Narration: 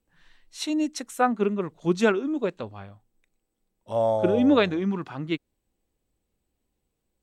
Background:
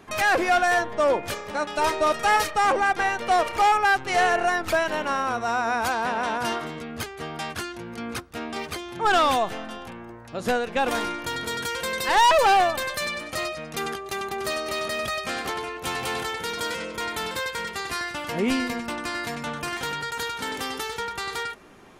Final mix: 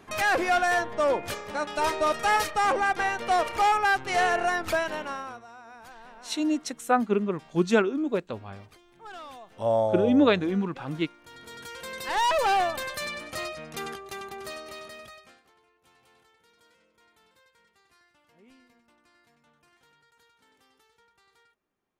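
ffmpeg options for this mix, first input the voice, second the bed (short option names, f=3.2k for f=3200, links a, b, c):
-filter_complex "[0:a]adelay=5700,volume=-0.5dB[a];[1:a]volume=15dB,afade=t=out:st=4.71:d=0.76:silence=0.1,afade=t=in:st=11.2:d=1.36:silence=0.125893,afade=t=out:st=13.66:d=1.75:silence=0.0375837[b];[a][b]amix=inputs=2:normalize=0"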